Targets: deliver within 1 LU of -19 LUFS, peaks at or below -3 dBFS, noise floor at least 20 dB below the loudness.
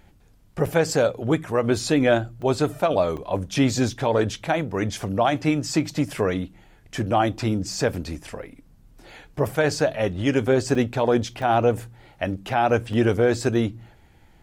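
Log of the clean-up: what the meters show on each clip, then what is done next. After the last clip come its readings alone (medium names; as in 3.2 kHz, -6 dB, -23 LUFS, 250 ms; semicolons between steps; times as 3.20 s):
dropouts 6; longest dropout 3.9 ms; loudness -23.0 LUFS; peak level -9.0 dBFS; loudness target -19.0 LUFS
-> interpolate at 0.66/2.42/3.17/10.75/11.42/12.93 s, 3.9 ms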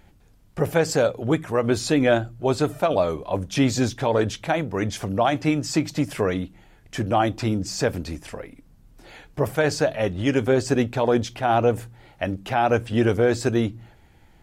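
dropouts 0; loudness -23.0 LUFS; peak level -9.0 dBFS; loudness target -19.0 LUFS
-> trim +4 dB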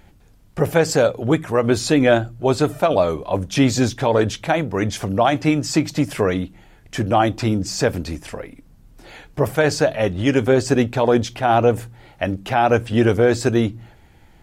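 loudness -19.0 LUFS; peak level -5.0 dBFS; noise floor -50 dBFS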